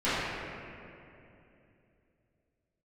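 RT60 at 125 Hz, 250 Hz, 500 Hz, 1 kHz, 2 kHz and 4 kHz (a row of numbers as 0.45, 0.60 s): 3.7, 3.5, 3.1, 2.5, 2.5, 1.8 s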